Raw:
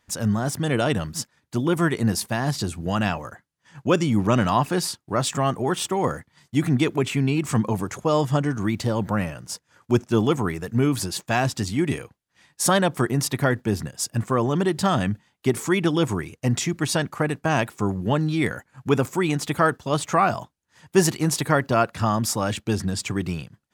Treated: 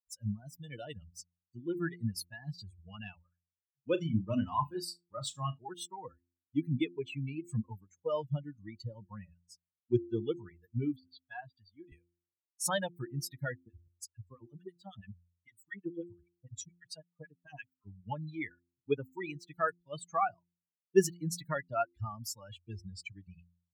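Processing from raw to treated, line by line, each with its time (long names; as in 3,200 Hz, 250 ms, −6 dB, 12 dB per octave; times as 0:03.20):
0:03.22–0:05.59: flutter between parallel walls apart 6.2 metres, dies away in 0.41 s
0:10.96–0:11.92: Chebyshev low-pass with heavy ripple 4,800 Hz, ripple 6 dB
0:13.55–0:17.87: two-band tremolo in antiphase 9 Hz, depth 100%, crossover 1,100 Hz
whole clip: spectral dynamics exaggerated over time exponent 3; hum removal 86.85 Hz, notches 4; dynamic equaliser 370 Hz, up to +4 dB, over −45 dBFS, Q 2.4; level −6.5 dB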